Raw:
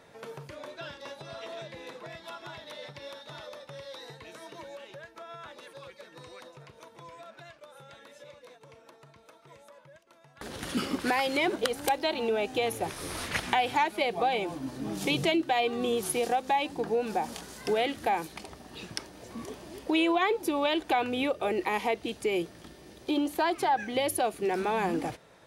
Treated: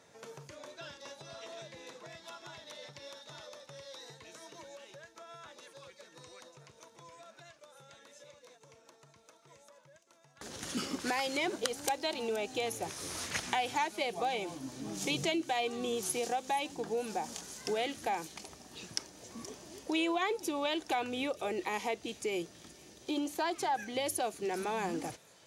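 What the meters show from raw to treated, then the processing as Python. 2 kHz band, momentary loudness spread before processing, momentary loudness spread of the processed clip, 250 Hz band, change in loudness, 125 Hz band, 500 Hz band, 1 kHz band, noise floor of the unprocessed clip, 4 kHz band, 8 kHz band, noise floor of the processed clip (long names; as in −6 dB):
−5.5 dB, 18 LU, 19 LU, −6.5 dB, −6.0 dB, −7.0 dB, −6.5 dB, −6.5 dB, −57 dBFS, −4.0 dB, +0.5 dB, −62 dBFS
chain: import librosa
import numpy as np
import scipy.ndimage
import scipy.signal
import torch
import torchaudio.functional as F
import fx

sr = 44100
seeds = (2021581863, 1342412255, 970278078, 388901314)

p1 = scipy.signal.sosfilt(scipy.signal.butter(2, 66.0, 'highpass', fs=sr, output='sos'), x)
p2 = fx.peak_eq(p1, sr, hz=6500.0, db=11.5, octaves=0.84)
p3 = p2 + fx.echo_wet_highpass(p2, sr, ms=473, feedback_pct=75, hz=4800.0, wet_db=-15, dry=0)
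y = F.gain(torch.from_numpy(p3), -6.5).numpy()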